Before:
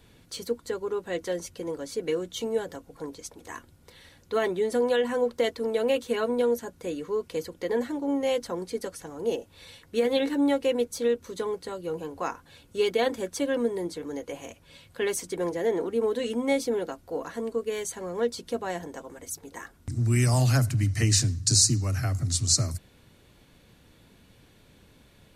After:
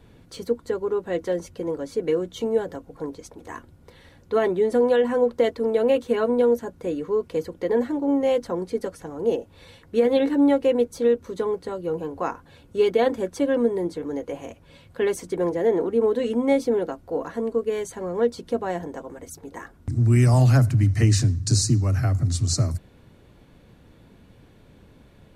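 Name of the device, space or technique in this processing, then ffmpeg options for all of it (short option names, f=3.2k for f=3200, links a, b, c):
through cloth: -af "highshelf=f=2k:g=-12,volume=6dB"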